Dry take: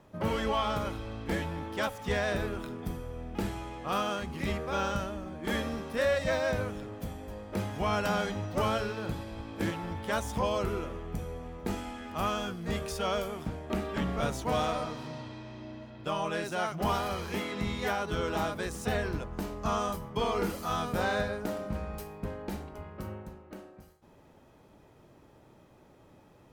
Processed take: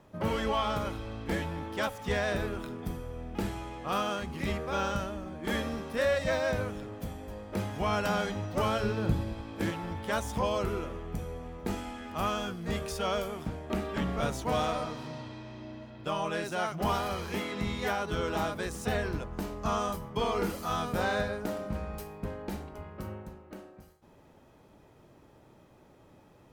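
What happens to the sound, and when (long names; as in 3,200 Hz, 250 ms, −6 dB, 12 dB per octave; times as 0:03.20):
0:08.83–0:09.33: low-shelf EQ 340 Hz +9.5 dB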